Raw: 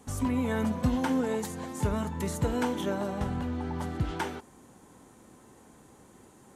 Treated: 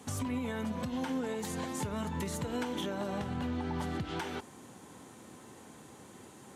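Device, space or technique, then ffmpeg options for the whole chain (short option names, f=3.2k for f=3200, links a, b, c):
broadcast voice chain: -af "highpass=f=79:w=0.5412,highpass=f=79:w=1.3066,deesser=0.75,acompressor=threshold=-32dB:ratio=4,equalizer=f=3.3k:t=o:w=1.6:g=5,alimiter=level_in=4.5dB:limit=-24dB:level=0:latency=1:release=190,volume=-4.5dB,volume=2.5dB"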